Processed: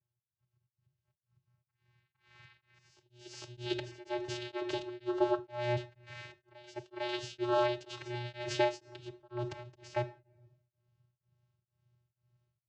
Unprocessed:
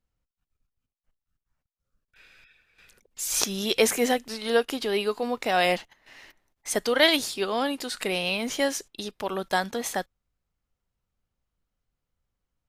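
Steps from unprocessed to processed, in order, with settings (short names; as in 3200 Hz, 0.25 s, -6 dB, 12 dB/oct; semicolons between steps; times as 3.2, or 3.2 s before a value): high shelf 4100 Hz +11 dB; notch 460 Hz, Q 14; compressor 16:1, threshold -27 dBFS, peak gain reduction 16.5 dB; auto swell 0.379 s; AGC gain up to 13 dB; vocoder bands 8, square 121 Hz; air absorption 100 m; reverse echo 0.452 s -18.5 dB; reverb RT60 0.90 s, pre-delay 7 ms, DRR 11 dB; beating tremolo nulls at 2.1 Hz; gain -8 dB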